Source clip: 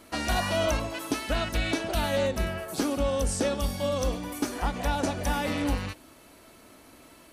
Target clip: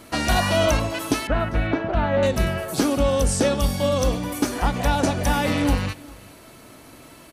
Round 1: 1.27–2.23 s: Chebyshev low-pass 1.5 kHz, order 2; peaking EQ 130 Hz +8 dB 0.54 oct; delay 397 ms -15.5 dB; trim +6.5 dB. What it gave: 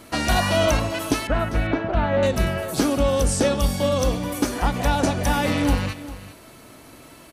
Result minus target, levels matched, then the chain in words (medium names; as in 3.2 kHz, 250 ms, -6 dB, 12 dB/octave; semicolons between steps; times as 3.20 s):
echo-to-direct +8 dB
1.27–2.23 s: Chebyshev low-pass 1.5 kHz, order 2; peaking EQ 130 Hz +8 dB 0.54 oct; delay 397 ms -23.5 dB; trim +6.5 dB